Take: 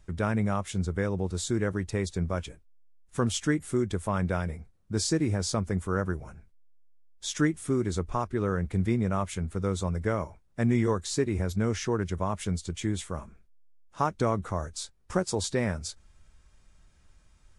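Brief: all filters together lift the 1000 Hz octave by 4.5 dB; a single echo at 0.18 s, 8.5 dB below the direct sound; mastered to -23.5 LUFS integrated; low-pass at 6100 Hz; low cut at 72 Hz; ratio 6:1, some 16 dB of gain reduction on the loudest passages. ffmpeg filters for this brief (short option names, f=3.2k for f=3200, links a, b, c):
-af "highpass=72,lowpass=6.1k,equalizer=f=1k:t=o:g=5.5,acompressor=threshold=-37dB:ratio=6,aecho=1:1:180:0.376,volume=18dB"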